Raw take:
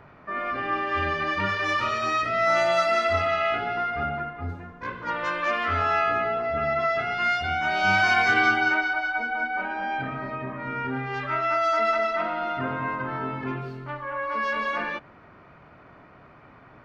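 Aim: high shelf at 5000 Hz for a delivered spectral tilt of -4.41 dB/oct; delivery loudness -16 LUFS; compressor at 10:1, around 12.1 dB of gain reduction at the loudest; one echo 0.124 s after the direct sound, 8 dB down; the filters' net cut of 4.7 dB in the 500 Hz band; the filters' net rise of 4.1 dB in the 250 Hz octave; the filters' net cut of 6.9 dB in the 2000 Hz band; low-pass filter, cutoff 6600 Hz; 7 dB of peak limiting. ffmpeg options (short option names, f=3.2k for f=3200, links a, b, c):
-af "lowpass=6.6k,equalizer=f=250:t=o:g=7.5,equalizer=f=500:t=o:g=-8,equalizer=f=2k:t=o:g=-8,highshelf=f=5k:g=-9,acompressor=threshold=-34dB:ratio=10,alimiter=level_in=7.5dB:limit=-24dB:level=0:latency=1,volume=-7.5dB,aecho=1:1:124:0.398,volume=23dB"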